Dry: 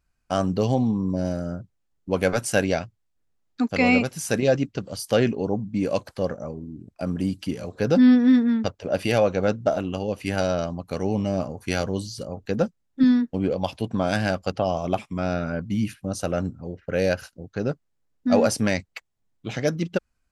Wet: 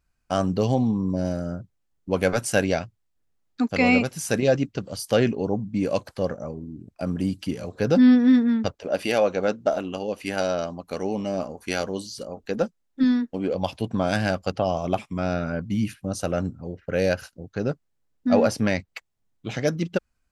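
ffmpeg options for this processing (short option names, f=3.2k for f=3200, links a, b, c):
-filter_complex "[0:a]asettb=1/sr,asplit=3[a][b][c];[a]atrim=end=8.714[d];[b]atrim=start=8.71:end=13.55,asetpts=PTS-STARTPTS,afade=t=in:d=0.004:c=qsin,afade=t=out:st=4.836:d=0.004:c=qsin,equalizer=f=110:t=o:w=1:g=-15[e];[c]atrim=start=13.546[f];[d][e]acrossfade=d=0.004:c1=hsin:c2=qsin[g];[g][f]acrossfade=d=0.004:c1=qsin:c2=hsin,asettb=1/sr,asplit=3[h][i][j];[h]atrim=end=18.294[k];[i]atrim=start=18.29:end=18.88,asetpts=PTS-STARTPTS,afade=t=in:d=0.004:c=qsin,afade=t=out:st=0.586:d=0.004:c=qsin,equalizer=f=8.8k:t=o:w=1.2:g=-9[l];[j]atrim=start=18.876[m];[k][l]acrossfade=d=0.004:c1=hsin:c2=qsin[n];[n][m]acrossfade=d=0.004:c1=qsin:c2=hsin"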